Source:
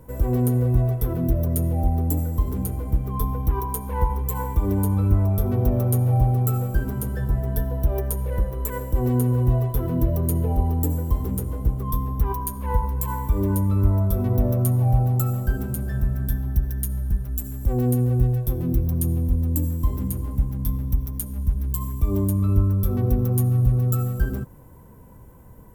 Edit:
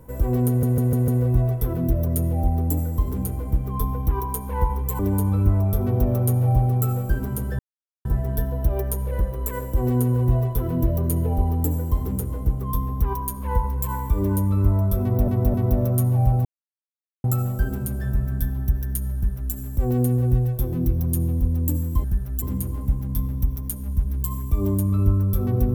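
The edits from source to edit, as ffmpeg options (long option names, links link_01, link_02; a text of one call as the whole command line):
ffmpeg -i in.wav -filter_complex "[0:a]asplit=12[link_01][link_02][link_03][link_04][link_05][link_06][link_07][link_08][link_09][link_10][link_11][link_12];[link_01]atrim=end=0.632[link_13];[link_02]atrim=start=0.478:end=0.632[link_14];[link_03]atrim=start=0.478:end=0.632[link_15];[link_04]atrim=start=0.478:end=0.632[link_16];[link_05]atrim=start=0.478:end=4.392[link_17];[link_06]atrim=start=4.638:end=7.24,asetpts=PTS-STARTPTS,afade=type=out:start_time=2.598:duration=0.004:curve=hsin,apad=pad_dur=0.46[link_18];[link_07]atrim=start=7.24:end=14.472,asetpts=PTS-STARTPTS,afade=type=in:duration=0.004:curve=hsin[link_19];[link_08]atrim=start=14.208:end=14.472[link_20];[link_09]atrim=start=14.208:end=15.12,asetpts=PTS-STARTPTS,afade=type=out:start_time=0.908:duration=0.004:curve=hsin,apad=pad_dur=0.79[link_21];[link_10]atrim=start=15.12:end=19.922,asetpts=PTS-STARTPTS,afade=type=in:duration=0.004:curve=hsin[link_22];[link_11]atrim=start=17.028:end=17.412[link_23];[link_12]atrim=start=19.918[link_24];[link_13][link_14]acrossfade=duration=0.004:curve1=hsin:curve2=hsin[link_25];[link_25][link_15]acrossfade=duration=0.004:curve1=hsin:curve2=hsin[link_26];[link_26][link_16]acrossfade=duration=0.004:curve1=hsin:curve2=hsin[link_27];[link_27][link_17]acrossfade=duration=0.004:curve1=hsin:curve2=hsin[link_28];[link_18][link_19]concat=n=2:v=0:a=1[link_29];[link_28][link_29]acrossfade=duration=0.004:curve1=hsin:curve2=hsin[link_30];[link_30][link_20]acrossfade=duration=0.004:curve1=hsin:curve2=hsin[link_31];[link_21][link_22]concat=n=2:v=0:a=1[link_32];[link_31][link_32]acrossfade=duration=0.004:curve1=hsin:curve2=hsin[link_33];[link_33][link_23]acrossfade=duration=0.004:curve1=hsin:curve2=hsin[link_34];[link_34][link_24]acrossfade=duration=0.004:curve1=hsin:curve2=hsin" out.wav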